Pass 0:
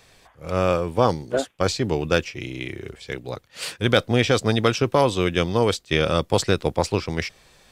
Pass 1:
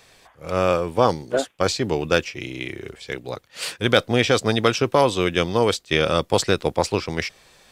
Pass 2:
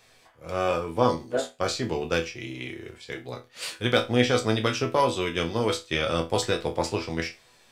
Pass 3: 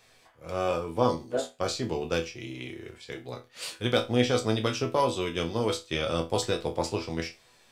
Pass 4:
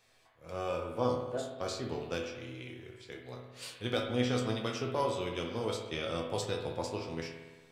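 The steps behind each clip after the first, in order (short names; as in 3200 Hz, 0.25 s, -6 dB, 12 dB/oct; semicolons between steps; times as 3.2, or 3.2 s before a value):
low shelf 180 Hz -6.5 dB; gain +2 dB
resonator bank E2 sus4, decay 0.25 s; gain +5.5 dB
dynamic EQ 1800 Hz, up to -5 dB, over -44 dBFS, Q 1.4; gain -2 dB
spring tank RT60 1.3 s, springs 56 ms, chirp 50 ms, DRR 4 dB; gain -8 dB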